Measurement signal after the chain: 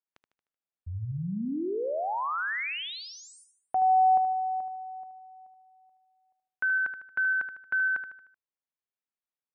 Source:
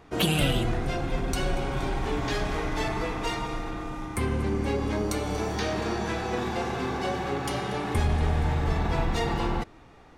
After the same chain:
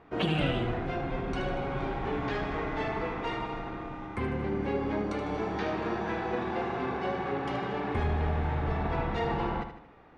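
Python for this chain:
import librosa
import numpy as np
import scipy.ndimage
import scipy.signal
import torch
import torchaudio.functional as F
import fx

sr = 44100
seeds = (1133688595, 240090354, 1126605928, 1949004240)

p1 = scipy.signal.sosfilt(scipy.signal.butter(2, 2400.0, 'lowpass', fs=sr, output='sos'), x)
p2 = fx.low_shelf(p1, sr, hz=100.0, db=-8.0)
p3 = p2 + fx.echo_feedback(p2, sr, ms=76, feedback_pct=45, wet_db=-9, dry=0)
y = p3 * librosa.db_to_amplitude(-2.0)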